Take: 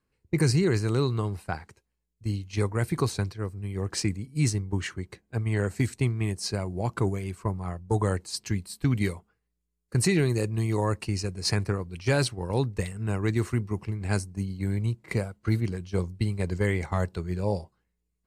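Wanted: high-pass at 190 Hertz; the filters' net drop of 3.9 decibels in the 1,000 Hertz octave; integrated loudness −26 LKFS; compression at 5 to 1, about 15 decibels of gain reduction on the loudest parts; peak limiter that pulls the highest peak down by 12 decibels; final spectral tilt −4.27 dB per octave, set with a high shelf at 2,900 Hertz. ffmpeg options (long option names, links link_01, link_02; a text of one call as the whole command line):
ffmpeg -i in.wav -af "highpass=190,equalizer=frequency=1000:width_type=o:gain=-6,highshelf=frequency=2900:gain=7,acompressor=threshold=-36dB:ratio=5,volume=18dB,alimiter=limit=-15dB:level=0:latency=1" out.wav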